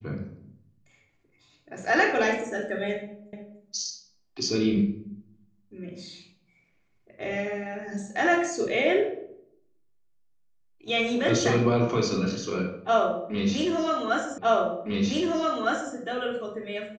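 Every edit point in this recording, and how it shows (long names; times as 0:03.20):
0:03.33: the same again, the last 0.29 s
0:14.38: the same again, the last 1.56 s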